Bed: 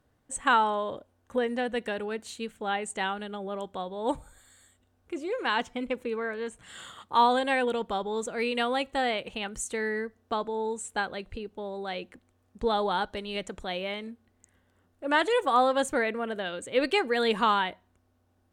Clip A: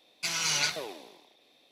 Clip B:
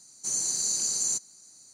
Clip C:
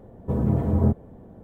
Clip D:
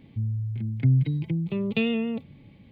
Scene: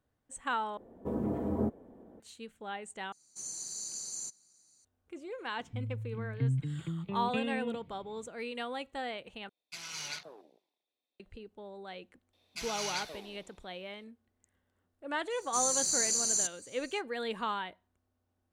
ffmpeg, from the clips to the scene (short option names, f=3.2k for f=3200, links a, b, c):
-filter_complex "[2:a]asplit=2[a][b];[1:a]asplit=2[c][d];[0:a]volume=-10.5dB[e];[3:a]lowshelf=f=190:t=q:w=1.5:g=-10[f];[c]afwtdn=0.01[g];[e]asplit=4[h][i][j][k];[h]atrim=end=0.774[l];[f]atrim=end=1.43,asetpts=PTS-STARTPTS,volume=-7dB[m];[i]atrim=start=2.196:end=3.124[n];[a]atrim=end=1.73,asetpts=PTS-STARTPTS,volume=-12.5dB[o];[j]atrim=start=4.846:end=9.494[p];[g]atrim=end=1.71,asetpts=PTS-STARTPTS,volume=-12.5dB[q];[k]atrim=start=11.196[r];[4:a]atrim=end=2.71,asetpts=PTS-STARTPTS,volume=-10dB,afade=t=in:d=0.004:c=hsin,afade=t=out:st=2.706:d=0.004:c=hsin,adelay=245637S[s];[d]atrim=end=1.71,asetpts=PTS-STARTPTS,volume=-9.5dB,afade=t=in:d=0.004:c=hsin,afade=t=out:st=1.706:d=0.004:c=hsin,adelay=12330[t];[b]atrim=end=1.73,asetpts=PTS-STARTPTS,volume=-2dB,afade=t=in:d=0.05,afade=t=out:st=1.68:d=0.05,adelay=15290[u];[l][m]acrossfade=d=0.004:c1=hsin:c2=hsin[v];[v][n]acrossfade=d=0.004:c1=hsin:c2=hsin[w];[w][o]acrossfade=d=0.004:c1=hsin:c2=hsin[x];[x][p]acrossfade=d=0.004:c1=hsin:c2=hsin[y];[y][q]acrossfade=d=0.004:c1=hsin:c2=hsin[z];[z][r]acrossfade=d=0.004:c1=hsin:c2=hsin[aa];[aa][s][t][u]amix=inputs=4:normalize=0"